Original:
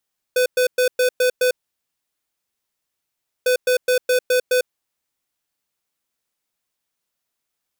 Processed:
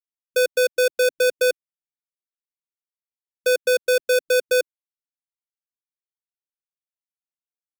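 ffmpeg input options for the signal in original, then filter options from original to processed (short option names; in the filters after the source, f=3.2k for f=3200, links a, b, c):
-f lavfi -i "aevalsrc='0.15*(2*lt(mod(502*t,1),0.5)-1)*clip(min(mod(mod(t,3.1),0.21),0.1-mod(mod(t,3.1),0.21))/0.005,0,1)*lt(mod(t,3.1),1.26)':d=6.2:s=44100"
-filter_complex "[0:a]afftfilt=real='re*gte(hypot(re,im),0.02)':imag='im*gte(hypot(re,im),0.02)':win_size=1024:overlap=0.75,acrossover=split=240[a][b];[b]acrusher=bits=6:mix=0:aa=0.000001[c];[a][c]amix=inputs=2:normalize=0"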